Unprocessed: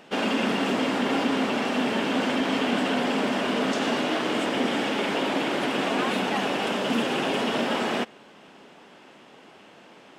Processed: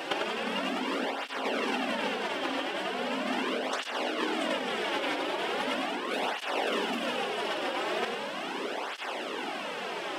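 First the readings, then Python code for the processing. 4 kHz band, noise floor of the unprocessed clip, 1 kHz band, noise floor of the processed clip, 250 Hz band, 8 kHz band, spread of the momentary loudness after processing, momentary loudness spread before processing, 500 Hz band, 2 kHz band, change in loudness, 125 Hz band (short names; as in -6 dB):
-4.0 dB, -51 dBFS, -4.0 dB, -37 dBFS, -10.0 dB, -5.5 dB, 5 LU, 1 LU, -5.0 dB, -3.5 dB, -6.5 dB, -13.5 dB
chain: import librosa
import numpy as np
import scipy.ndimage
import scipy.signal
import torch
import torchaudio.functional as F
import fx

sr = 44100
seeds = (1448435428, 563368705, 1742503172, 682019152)

p1 = scipy.signal.sosfilt(scipy.signal.butter(2, 330.0, 'highpass', fs=sr, output='sos'), x)
p2 = fx.peak_eq(p1, sr, hz=6800.0, db=-4.0, octaves=0.37)
p3 = fx.over_compress(p2, sr, threshold_db=-34.0, ratio=-0.5)
p4 = p3 + fx.echo_single(p3, sr, ms=98, db=-6.5, dry=0)
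p5 = fx.flanger_cancel(p4, sr, hz=0.39, depth_ms=4.8)
y = p5 * 10.0 ** (8.0 / 20.0)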